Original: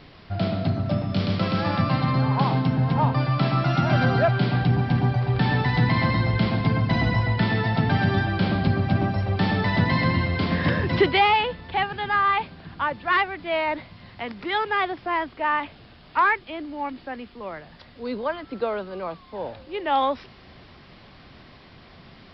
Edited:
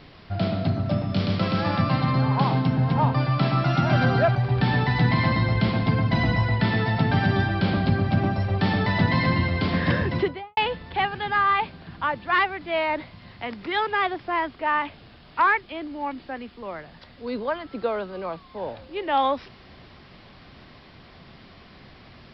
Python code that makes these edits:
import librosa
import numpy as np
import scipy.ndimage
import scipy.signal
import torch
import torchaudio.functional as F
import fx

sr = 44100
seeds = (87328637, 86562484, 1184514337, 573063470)

y = fx.studio_fade_out(x, sr, start_s=10.76, length_s=0.59)
y = fx.edit(y, sr, fx.cut(start_s=4.35, length_s=0.78), tone=tone)